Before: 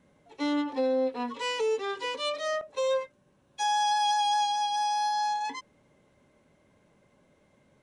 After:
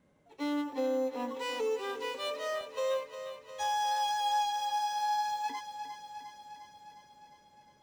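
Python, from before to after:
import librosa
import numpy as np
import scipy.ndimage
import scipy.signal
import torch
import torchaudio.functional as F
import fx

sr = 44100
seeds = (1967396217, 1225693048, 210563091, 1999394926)

p1 = fx.sample_hold(x, sr, seeds[0], rate_hz=6600.0, jitter_pct=0)
p2 = x + (p1 * librosa.db_to_amplitude(-12.0))
p3 = fx.echo_thinned(p2, sr, ms=355, feedback_pct=68, hz=240.0, wet_db=-10.5)
y = p3 * librosa.db_to_amplitude(-6.5)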